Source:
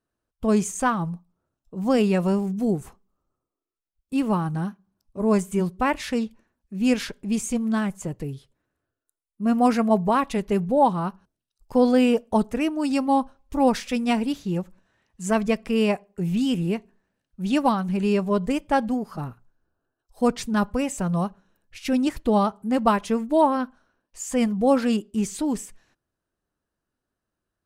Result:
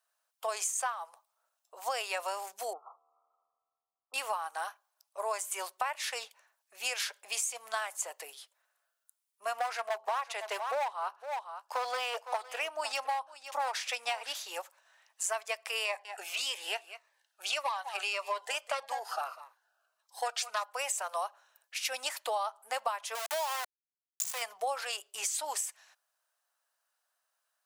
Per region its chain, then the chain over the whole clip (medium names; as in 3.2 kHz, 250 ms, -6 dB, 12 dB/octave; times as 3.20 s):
2.73–4.14 s: brick-wall FIR low-pass 1.4 kHz + feedback comb 77 Hz, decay 2 s, mix 30% + tape noise reduction on one side only encoder only
9.53–14.35 s: treble shelf 7.9 kHz -11 dB + hard clipper -16 dBFS + delay 509 ms -16.5 dB
15.85–20.64 s: overdrive pedal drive 12 dB, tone 3.4 kHz, clips at -9 dBFS + delay 197 ms -17 dB + Shepard-style phaser falling 1.7 Hz
23.15–24.42 s: compression 3:1, threshold -25 dBFS + small samples zeroed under -29.5 dBFS
whole clip: steep high-pass 640 Hz 36 dB/octave; treble shelf 4.1 kHz +7 dB; compression 8:1, threshold -34 dBFS; trim +3.5 dB